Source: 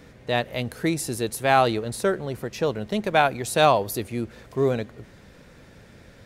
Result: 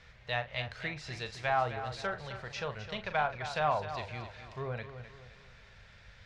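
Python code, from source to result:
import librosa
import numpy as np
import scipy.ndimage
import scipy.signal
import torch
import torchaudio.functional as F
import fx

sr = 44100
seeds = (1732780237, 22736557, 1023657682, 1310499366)

p1 = fx.env_lowpass_down(x, sr, base_hz=1200.0, full_db=-17.0)
p2 = fx.tone_stack(p1, sr, knobs='10-0-10')
p3 = np.clip(p2, -10.0 ** (-31.0 / 20.0), 10.0 ** (-31.0 / 20.0))
p4 = p2 + (p3 * librosa.db_to_amplitude(-6.5))
p5 = fx.air_absorb(p4, sr, metres=170.0)
p6 = fx.doubler(p5, sr, ms=40.0, db=-10.5)
y = p6 + fx.echo_feedback(p6, sr, ms=260, feedback_pct=42, wet_db=-11, dry=0)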